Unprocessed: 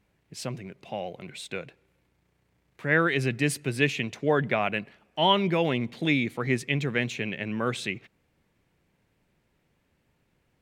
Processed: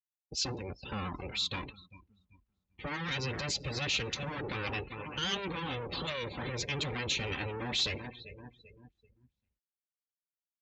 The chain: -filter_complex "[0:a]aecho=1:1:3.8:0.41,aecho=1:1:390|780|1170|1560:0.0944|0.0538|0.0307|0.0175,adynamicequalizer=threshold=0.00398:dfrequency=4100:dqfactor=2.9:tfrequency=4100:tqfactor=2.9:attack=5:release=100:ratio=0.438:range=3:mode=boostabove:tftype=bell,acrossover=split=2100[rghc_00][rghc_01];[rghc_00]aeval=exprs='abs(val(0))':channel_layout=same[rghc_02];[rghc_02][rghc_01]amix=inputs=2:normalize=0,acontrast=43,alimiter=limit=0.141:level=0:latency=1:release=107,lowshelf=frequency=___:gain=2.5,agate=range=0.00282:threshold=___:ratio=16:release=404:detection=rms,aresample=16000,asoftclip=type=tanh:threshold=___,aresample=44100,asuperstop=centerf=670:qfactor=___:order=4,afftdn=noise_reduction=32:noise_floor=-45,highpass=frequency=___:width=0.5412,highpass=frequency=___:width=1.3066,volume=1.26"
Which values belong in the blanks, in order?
190, 0.00158, 0.0501, 7.8, 46, 46